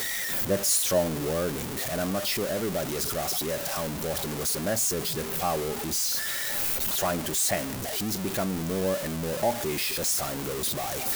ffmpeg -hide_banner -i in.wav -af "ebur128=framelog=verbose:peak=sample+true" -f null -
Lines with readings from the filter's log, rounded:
Integrated loudness:
  I:         -26.9 LUFS
  Threshold: -36.9 LUFS
Loudness range:
  LRA:         2.1 LU
  Threshold: -47.1 LUFS
  LRA low:   -28.2 LUFS
  LRA high:  -26.1 LUFS
Sample peak:
  Peak:      -12.3 dBFS
True peak:
  Peak:      -12.3 dBFS